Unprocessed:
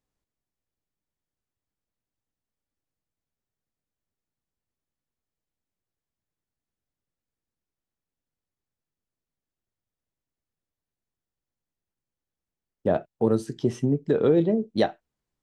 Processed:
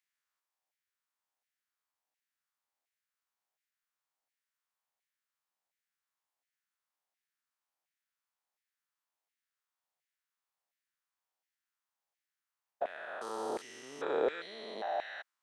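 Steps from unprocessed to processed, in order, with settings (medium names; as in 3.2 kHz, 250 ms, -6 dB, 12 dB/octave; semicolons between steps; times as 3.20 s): spectrogram pixelated in time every 400 ms; LFO high-pass saw down 1.4 Hz 700–2100 Hz; trim +1.5 dB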